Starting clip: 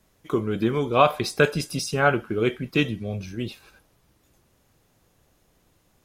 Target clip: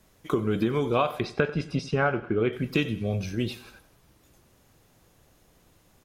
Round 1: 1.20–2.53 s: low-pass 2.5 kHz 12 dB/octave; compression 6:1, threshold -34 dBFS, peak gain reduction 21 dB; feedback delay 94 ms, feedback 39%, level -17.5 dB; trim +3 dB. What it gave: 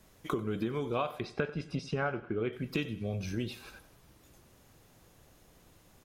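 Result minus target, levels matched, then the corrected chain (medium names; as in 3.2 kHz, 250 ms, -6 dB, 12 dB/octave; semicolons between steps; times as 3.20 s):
compression: peak gain reduction +8.5 dB
1.20–2.53 s: low-pass 2.5 kHz 12 dB/octave; compression 6:1, threshold -24 dBFS, peak gain reduction 12.5 dB; feedback delay 94 ms, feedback 39%, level -17.5 dB; trim +3 dB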